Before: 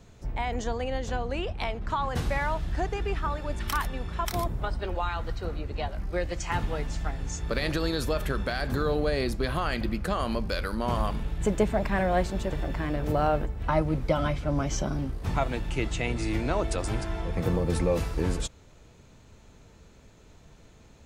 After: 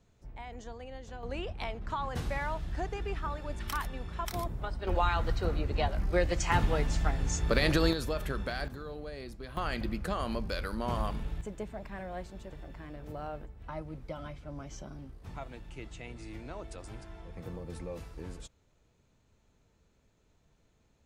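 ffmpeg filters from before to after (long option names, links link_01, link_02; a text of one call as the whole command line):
ffmpeg -i in.wav -af "asetnsamples=nb_out_samples=441:pad=0,asendcmd='1.23 volume volume -6dB;4.87 volume volume 2dB;7.93 volume volume -5.5dB;8.68 volume volume -15.5dB;9.57 volume volume -5dB;11.41 volume volume -15.5dB',volume=-14dB" out.wav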